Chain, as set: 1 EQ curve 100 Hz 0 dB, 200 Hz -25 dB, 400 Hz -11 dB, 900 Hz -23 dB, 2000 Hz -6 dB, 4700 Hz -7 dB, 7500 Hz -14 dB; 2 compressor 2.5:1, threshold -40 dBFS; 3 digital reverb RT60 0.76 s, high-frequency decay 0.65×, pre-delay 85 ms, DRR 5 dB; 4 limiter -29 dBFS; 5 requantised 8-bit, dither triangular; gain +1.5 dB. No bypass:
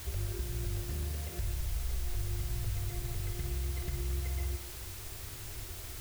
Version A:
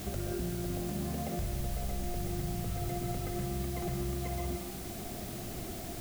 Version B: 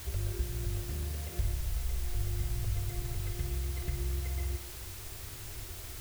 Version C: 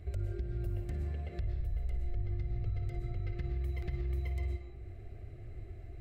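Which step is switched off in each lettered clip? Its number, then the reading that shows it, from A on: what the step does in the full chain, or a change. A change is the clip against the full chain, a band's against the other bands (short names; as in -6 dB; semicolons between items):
1, momentary loudness spread change -2 LU; 4, crest factor change +3.5 dB; 5, distortion -11 dB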